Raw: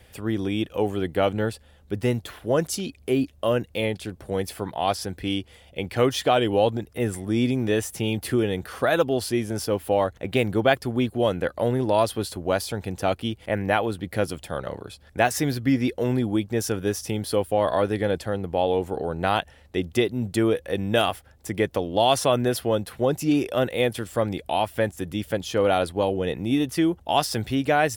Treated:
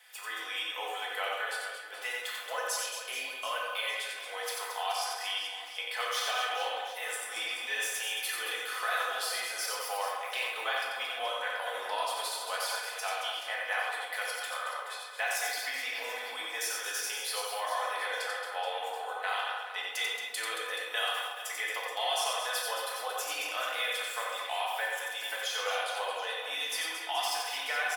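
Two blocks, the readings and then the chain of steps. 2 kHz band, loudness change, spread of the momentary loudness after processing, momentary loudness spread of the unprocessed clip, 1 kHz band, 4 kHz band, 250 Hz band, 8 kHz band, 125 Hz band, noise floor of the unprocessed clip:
-0.5 dB, -8.5 dB, 5 LU, 8 LU, -6.5 dB, -0.5 dB, -37.5 dB, -1.0 dB, under -40 dB, -54 dBFS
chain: inverse Chebyshev high-pass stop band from 190 Hz, stop band 70 dB; comb 4 ms, depth 58%; compression 2.5:1, threshold -32 dBFS, peak gain reduction 10 dB; on a send: reverse bouncing-ball echo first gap 90 ms, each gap 1.5×, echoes 5; on the sum: simulated room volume 390 m³, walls mixed, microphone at 1.5 m; trim -3.5 dB

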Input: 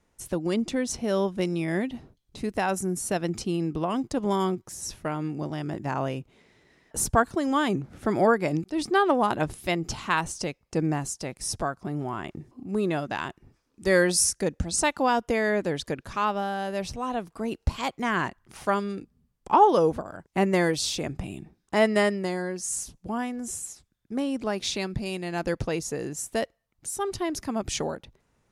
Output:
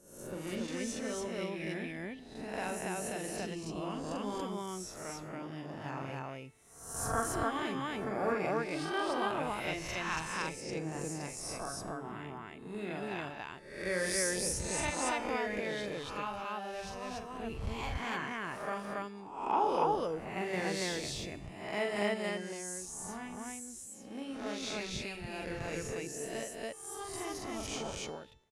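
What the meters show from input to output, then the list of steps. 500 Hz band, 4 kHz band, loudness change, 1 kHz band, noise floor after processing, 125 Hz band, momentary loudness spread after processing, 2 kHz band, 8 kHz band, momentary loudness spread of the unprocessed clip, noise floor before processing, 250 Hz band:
-10.0 dB, -7.0 dB, -9.5 dB, -9.5 dB, -49 dBFS, -11.0 dB, 10 LU, -7.0 dB, -8.0 dB, 11 LU, -72 dBFS, -11.5 dB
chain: reverse spectral sustain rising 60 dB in 0.77 s; feedback comb 440 Hz, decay 0.71 s, mix 70%; dynamic bell 2.4 kHz, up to +6 dB, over -55 dBFS, Q 2.6; loudspeakers at several distances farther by 15 m -4 dB, 97 m 0 dB; trim -6 dB

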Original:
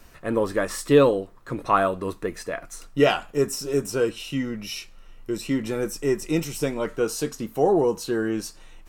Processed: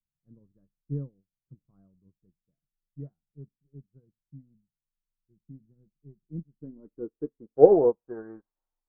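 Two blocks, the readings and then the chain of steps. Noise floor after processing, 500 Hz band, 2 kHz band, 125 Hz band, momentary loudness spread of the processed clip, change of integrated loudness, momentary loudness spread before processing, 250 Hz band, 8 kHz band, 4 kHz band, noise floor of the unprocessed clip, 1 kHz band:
under -85 dBFS, -4.0 dB, under -30 dB, -8.5 dB, 24 LU, +1.5 dB, 13 LU, -10.0 dB, under -40 dB, under -40 dB, -48 dBFS, -12.0 dB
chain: low-pass sweep 160 Hz -> 870 Hz, 6.14–8.32 s; resonant high shelf 2.2 kHz -10 dB, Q 3; upward expansion 2.5:1, over -40 dBFS; trim +1.5 dB

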